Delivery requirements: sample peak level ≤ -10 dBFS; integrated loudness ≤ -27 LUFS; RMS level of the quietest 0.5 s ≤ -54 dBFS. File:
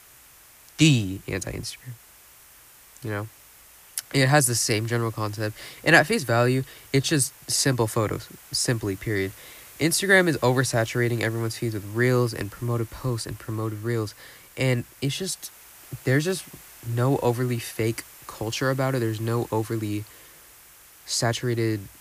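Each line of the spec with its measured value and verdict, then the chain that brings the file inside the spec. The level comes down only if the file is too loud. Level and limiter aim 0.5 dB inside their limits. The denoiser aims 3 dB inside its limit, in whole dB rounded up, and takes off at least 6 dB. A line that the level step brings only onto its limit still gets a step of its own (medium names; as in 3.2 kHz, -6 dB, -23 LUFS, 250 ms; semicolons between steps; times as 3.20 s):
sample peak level -2.5 dBFS: fail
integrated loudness -24.5 LUFS: fail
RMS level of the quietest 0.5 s -51 dBFS: fail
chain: noise reduction 6 dB, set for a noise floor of -51 dBFS; trim -3 dB; peak limiter -10.5 dBFS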